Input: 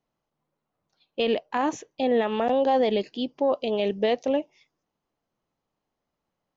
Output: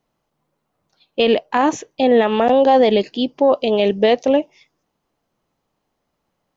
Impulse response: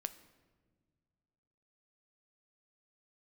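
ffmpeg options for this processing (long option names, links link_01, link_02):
-af "volume=9dB"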